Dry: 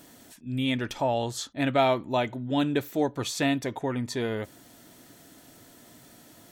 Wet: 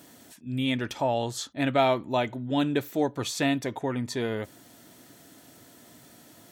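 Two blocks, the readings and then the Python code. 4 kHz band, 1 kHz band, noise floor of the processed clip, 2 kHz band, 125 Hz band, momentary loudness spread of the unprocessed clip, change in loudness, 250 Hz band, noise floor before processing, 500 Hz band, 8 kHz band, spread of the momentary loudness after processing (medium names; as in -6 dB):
0.0 dB, 0.0 dB, -54 dBFS, 0.0 dB, -0.5 dB, 8 LU, 0.0 dB, 0.0 dB, -54 dBFS, 0.0 dB, 0.0 dB, 8 LU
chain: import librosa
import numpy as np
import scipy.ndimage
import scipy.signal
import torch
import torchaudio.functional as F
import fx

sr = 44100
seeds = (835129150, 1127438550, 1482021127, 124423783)

y = scipy.signal.sosfilt(scipy.signal.butter(2, 67.0, 'highpass', fs=sr, output='sos'), x)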